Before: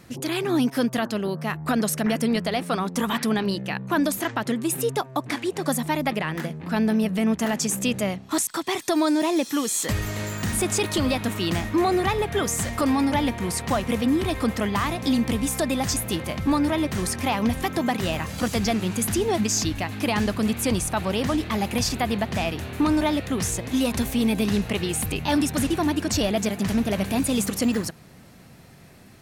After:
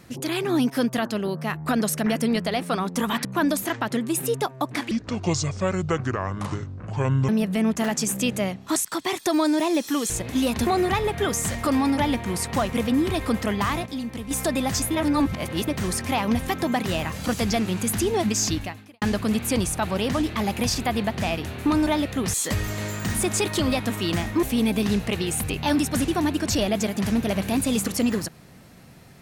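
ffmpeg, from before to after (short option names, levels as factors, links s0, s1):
-filter_complex "[0:a]asplit=13[s0][s1][s2][s3][s4][s5][s6][s7][s8][s9][s10][s11][s12];[s0]atrim=end=3.252[s13];[s1]atrim=start=3.798:end=5.464[s14];[s2]atrim=start=5.46:end=6.91,asetpts=PTS-STARTPTS,asetrate=26901,aresample=44100[s15];[s3]atrim=start=6.906:end=9.722[s16];[s4]atrim=start=23.478:end=24.052[s17];[s5]atrim=start=11.808:end=15.002[s18];[s6]atrim=start=14.998:end=15.452,asetpts=PTS-STARTPTS,volume=0.355[s19];[s7]atrim=start=15.448:end=16.052[s20];[s8]atrim=start=16.048:end=16.822,asetpts=PTS-STARTPTS,areverse[s21];[s9]atrim=start=16.818:end=20.16,asetpts=PTS-STARTPTS,afade=t=out:st=2.902:d=0.44:c=qua[s22];[s10]atrim=start=20.16:end=23.482,asetpts=PTS-STARTPTS,afade=t=in:d=0.004:c=hsin[s23];[s11]atrim=start=9.718:end=11.812[s24];[s12]atrim=start=24.048[s25];[s13][s14]acrossfade=d=0.004:c1=hsin:c2=hsin[s26];[s26][s15]acrossfade=d=0.004:c1=hsin:c2=hsin[s27];[s27][s16]acrossfade=d=0.004:c1=hsin:c2=hsin[s28];[s28][s17]acrossfade=d=0.004:c1=hsin:c2=hsin[s29];[s29][s18]acrossfade=d=0.004:c1=hsin:c2=hsin[s30];[s30][s19]acrossfade=d=0.004:c1=hsin:c2=hsin[s31];[s31][s20]acrossfade=d=0.004:c1=hsin:c2=hsin[s32];[s32][s21]acrossfade=d=0.004:c1=hsin:c2=hsin[s33];[s22][s23]concat=n=2:v=0:a=1[s34];[s33][s34]acrossfade=d=0.004:c1=hsin:c2=hsin[s35];[s35][s24]acrossfade=d=0.004:c1=hsin:c2=hsin[s36];[s36][s25]acrossfade=d=0.004:c1=hsin:c2=hsin"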